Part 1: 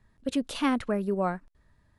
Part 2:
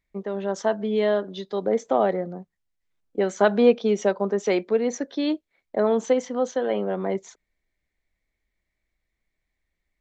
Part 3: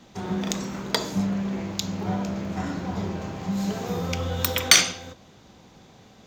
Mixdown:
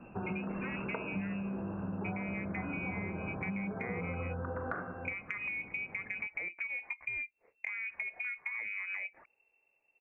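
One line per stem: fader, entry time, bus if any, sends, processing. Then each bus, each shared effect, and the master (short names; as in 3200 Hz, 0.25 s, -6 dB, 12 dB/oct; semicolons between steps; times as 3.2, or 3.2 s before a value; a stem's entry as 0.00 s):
0.0 dB, 0.00 s, bus A, no send, octaver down 1 oct, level -1 dB; de-hum 178.7 Hz, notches 38; endless flanger 4 ms -2.4 Hz
+1.0 dB, 1.90 s, bus A, no send, limiter -14.5 dBFS, peak gain reduction 8.5 dB
+0.5 dB, 0.00 s, no bus, no send, Chebyshev low-pass 1600 Hz, order 6
bus A: 0.0 dB, inverted band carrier 2700 Hz; compressor 10:1, threshold -31 dBFS, peak gain reduction 14 dB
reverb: off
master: compressor 6:1, threshold -35 dBFS, peak gain reduction 13.5 dB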